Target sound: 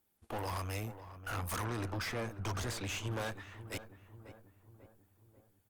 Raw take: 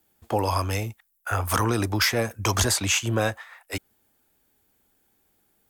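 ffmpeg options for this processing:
-filter_complex "[0:a]aeval=exprs='(tanh(25.1*val(0)+0.65)-tanh(0.65))/25.1':c=same,asettb=1/sr,asplit=3[a][b][c];[a]atrim=end=1.644[d];[b]atrim=start=1.64:end=3.11,asetpts=PTS-STARTPTS,afade=t=in:d=0.004:c=qsin,afade=t=out:st=1.466:d=0.004:c=qsin,aemphasis=mode=reproduction:type=cd[e];[c]atrim=start=3.106[f];[d][e]acrossfade=d=0.004:c1=hsin:c2=qsin[g];[g][f]acrossfade=d=0.004:c1=qsin:c2=hsin,asplit=2[h][i];[i]adelay=543,lowpass=f=1.3k:p=1,volume=-12dB,asplit=2[j][k];[k]adelay=543,lowpass=f=1.3k:p=1,volume=0.55,asplit=2[l][m];[m]adelay=543,lowpass=f=1.3k:p=1,volume=0.55,asplit=2[n][o];[o]adelay=543,lowpass=f=1.3k:p=1,volume=0.55,asplit=2[p][q];[q]adelay=543,lowpass=f=1.3k:p=1,volume=0.55,asplit=2[r][s];[s]adelay=543,lowpass=f=1.3k:p=1,volume=0.55[t];[j][l][n][p][r][t]amix=inputs=6:normalize=0[u];[h][u]amix=inputs=2:normalize=0,volume=-6dB" -ar 48000 -c:a libopus -b:a 32k

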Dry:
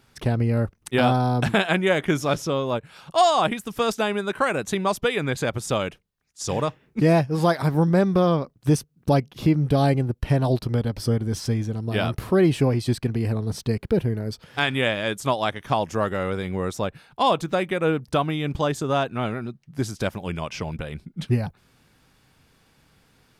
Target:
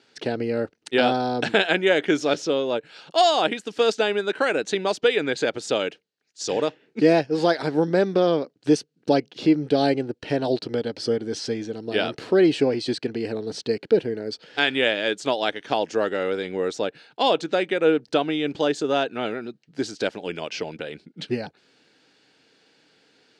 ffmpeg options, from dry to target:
-af "highpass=290,equalizer=f=300:t=q:w=4:g=6,equalizer=f=450:t=q:w=4:g=6,equalizer=f=1.1k:t=q:w=4:g=-9,equalizer=f=1.6k:t=q:w=4:g=3,equalizer=f=2.9k:t=q:w=4:g=4,equalizer=f=4.3k:t=q:w=4:g=7,lowpass=f=7.5k:w=0.5412,lowpass=f=7.5k:w=1.3066"

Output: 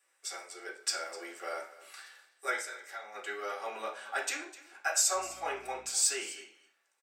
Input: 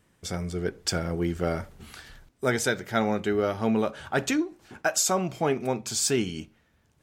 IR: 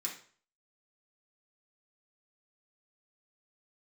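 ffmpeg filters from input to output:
-filter_complex "[0:a]highpass=f=550:w=0.5412,highpass=f=550:w=1.3066,asplit=3[a][b][c];[a]afade=t=out:st=2.55:d=0.02[d];[b]acompressor=threshold=-37dB:ratio=6,afade=t=in:st=2.55:d=0.02,afade=t=out:st=3.14:d=0.02[e];[c]afade=t=in:st=3.14:d=0.02[f];[d][e][f]amix=inputs=3:normalize=0,asettb=1/sr,asplit=3[g][h][i];[g]atrim=end=5.144[j];[h]atrim=start=5.14:end=5.9,asetpts=PTS-STARTPTS,afade=t=in:d=0.004:c=qsin,afade=t=out:st=0.756:d=0.004:c=qsin,aeval=exprs='val(0)+0.00251*(sin(2*PI*60*n/s)+sin(2*PI*2*60*n/s)/2+sin(2*PI*3*60*n/s)/3+sin(2*PI*4*60*n/s)/4+sin(2*PI*5*60*n/s)/5)':c=same[k];[i]atrim=start=5.896[l];[j][k]acrossfade=d=0.004:c1=hsin:c2=qsin[m];[m][l]acrossfade=d=0.004:c1=qsin:c2=hsin,aecho=1:1:253:0.133[n];[1:a]atrim=start_sample=2205,asetrate=48510,aresample=44100[o];[n][o]afir=irnorm=-1:irlink=0,volume=-3.5dB"

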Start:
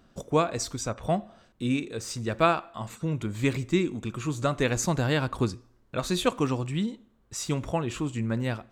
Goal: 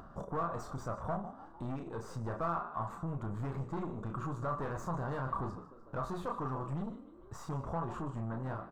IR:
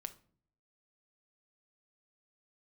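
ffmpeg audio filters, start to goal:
-filter_complex "[0:a]asplit=2[a][b];[b]aecho=1:1:5.1:0.65[c];[1:a]atrim=start_sample=2205,atrim=end_sample=6615,adelay=30[d];[c][d]afir=irnorm=-1:irlink=0,volume=-3dB[e];[a][e]amix=inputs=2:normalize=0,acompressor=threshold=-34dB:ratio=2,asplit=4[f][g][h][i];[g]adelay=151,afreqshift=64,volume=-17dB[j];[h]adelay=302,afreqshift=128,volume=-25dB[k];[i]adelay=453,afreqshift=192,volume=-32.9dB[l];[f][j][k][l]amix=inputs=4:normalize=0,aeval=exprs='(tanh(44.7*val(0)+0.45)-tanh(0.45))/44.7':c=same,firequalizer=gain_entry='entry(150,0);entry(240,-5);entry(1100,8);entry(2300,-18)':delay=0.05:min_phase=1,acompressor=mode=upward:threshold=-45dB:ratio=2.5,volume=1dB"

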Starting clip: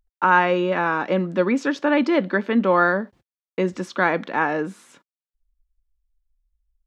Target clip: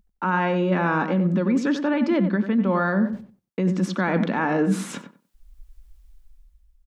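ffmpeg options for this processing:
-filter_complex "[0:a]equalizer=f=200:t=o:w=0.87:g=13,dynaudnorm=f=130:g=11:m=13.5dB,alimiter=limit=-8dB:level=0:latency=1:release=90,areverse,acompressor=threshold=-30dB:ratio=5,areverse,asplit=2[a][b];[b]adelay=93,lowpass=f=1.7k:p=1,volume=-8dB,asplit=2[c][d];[d]adelay=93,lowpass=f=1.7k:p=1,volume=0.21,asplit=2[e][f];[f]adelay=93,lowpass=f=1.7k:p=1,volume=0.21[g];[a][c][e][g]amix=inputs=4:normalize=0,volume=9dB"

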